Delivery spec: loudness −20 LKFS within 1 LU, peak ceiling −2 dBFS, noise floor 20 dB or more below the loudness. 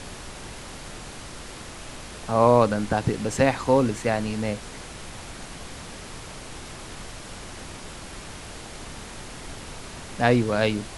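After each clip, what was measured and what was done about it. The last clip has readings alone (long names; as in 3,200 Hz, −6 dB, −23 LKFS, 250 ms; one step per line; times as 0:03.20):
background noise floor −40 dBFS; target noise floor −43 dBFS; integrated loudness −22.5 LKFS; sample peak −3.5 dBFS; target loudness −20.0 LKFS
→ noise reduction from a noise print 6 dB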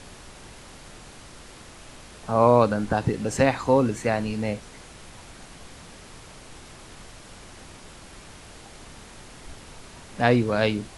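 background noise floor −46 dBFS; integrated loudness −22.5 LKFS; sample peak −3.5 dBFS; target loudness −20.0 LKFS
→ level +2.5 dB
brickwall limiter −2 dBFS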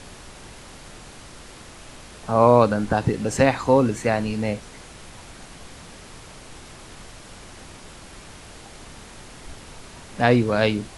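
integrated loudness −20.5 LKFS; sample peak −2.0 dBFS; background noise floor −44 dBFS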